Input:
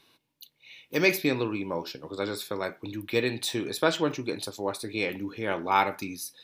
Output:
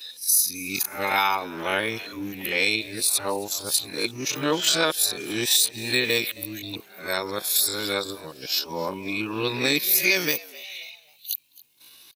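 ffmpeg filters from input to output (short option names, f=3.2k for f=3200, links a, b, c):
-filter_complex "[0:a]areverse,crystalizer=i=8:c=0,alimiter=limit=-8.5dB:level=0:latency=1:release=163,atempo=0.53,asplit=2[a][b];[b]asplit=3[c][d][e];[c]adelay=267,afreqshift=100,volume=-21dB[f];[d]adelay=534,afreqshift=200,volume=-28.5dB[g];[e]adelay=801,afreqshift=300,volume=-36.1dB[h];[f][g][h]amix=inputs=3:normalize=0[i];[a][i]amix=inputs=2:normalize=0"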